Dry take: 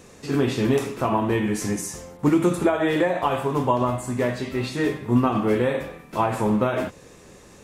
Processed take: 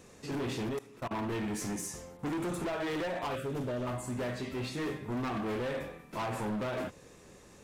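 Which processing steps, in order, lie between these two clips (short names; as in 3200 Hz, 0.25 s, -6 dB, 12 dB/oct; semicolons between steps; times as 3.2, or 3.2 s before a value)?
0.63–1.17 level quantiser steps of 23 dB; 3.35–3.87 elliptic band-stop 610–1300 Hz; hard clip -24.5 dBFS, distortion -6 dB; gain -7.5 dB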